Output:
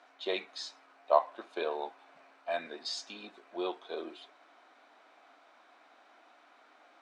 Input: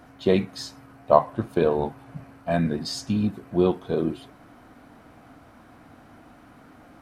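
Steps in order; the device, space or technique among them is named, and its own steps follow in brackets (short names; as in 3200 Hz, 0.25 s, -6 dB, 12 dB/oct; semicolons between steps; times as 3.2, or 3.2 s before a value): phone speaker on a table (speaker cabinet 430–7400 Hz, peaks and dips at 480 Hz -6 dB, 2400 Hz +4 dB, 3700 Hz +7 dB); gain -7 dB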